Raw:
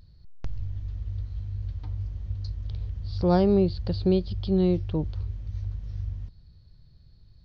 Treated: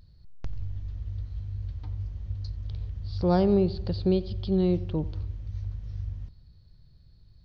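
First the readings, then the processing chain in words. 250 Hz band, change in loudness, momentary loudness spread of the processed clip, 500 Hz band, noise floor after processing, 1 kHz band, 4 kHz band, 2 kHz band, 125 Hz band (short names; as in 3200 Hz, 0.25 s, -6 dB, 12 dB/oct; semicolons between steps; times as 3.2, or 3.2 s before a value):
-1.5 dB, -1.5 dB, 14 LU, -1.5 dB, -56 dBFS, -1.5 dB, -1.5 dB, -1.5 dB, -1.5 dB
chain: analogue delay 89 ms, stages 2048, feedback 52%, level -18 dB; gain -1.5 dB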